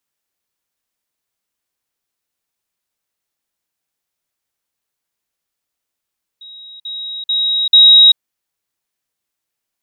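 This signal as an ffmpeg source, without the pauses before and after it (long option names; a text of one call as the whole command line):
ffmpeg -f lavfi -i "aevalsrc='pow(10,(-33+10*floor(t/0.44))/20)*sin(2*PI*3810*t)*clip(min(mod(t,0.44),0.39-mod(t,0.44))/0.005,0,1)':duration=1.76:sample_rate=44100" out.wav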